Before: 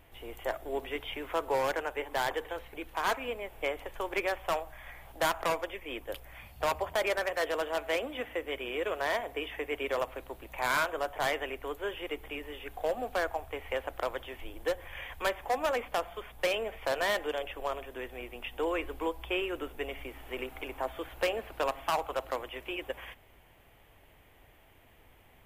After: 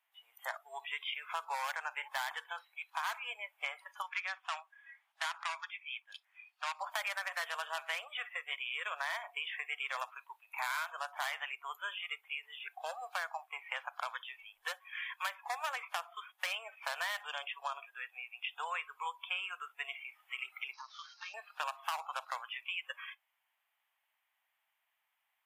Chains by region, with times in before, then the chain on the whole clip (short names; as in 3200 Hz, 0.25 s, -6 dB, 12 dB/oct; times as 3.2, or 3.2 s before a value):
4.02–6.79 HPF 1300 Hz 6 dB/oct + air absorption 55 m
20.73–21.34 CVSD 32 kbps + HPF 930 Hz 6 dB/oct + compressor 12:1, threshold -39 dBFS
whole clip: inverse Chebyshev high-pass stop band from 340 Hz, stop band 50 dB; spectral noise reduction 20 dB; compressor 6:1, threshold -36 dBFS; gain +2.5 dB